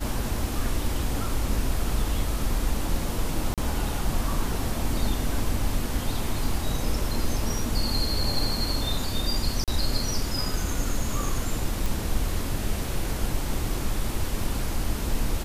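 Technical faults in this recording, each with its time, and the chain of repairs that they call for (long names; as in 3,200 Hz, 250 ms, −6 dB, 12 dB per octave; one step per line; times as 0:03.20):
0:03.54–0:03.58: drop-out 37 ms
0:09.64–0:09.68: drop-out 37 ms
0:11.86: click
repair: click removal
repair the gap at 0:03.54, 37 ms
repair the gap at 0:09.64, 37 ms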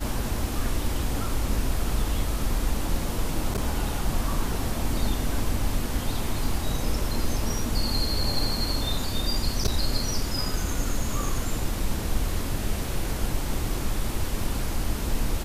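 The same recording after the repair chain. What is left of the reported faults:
none of them is left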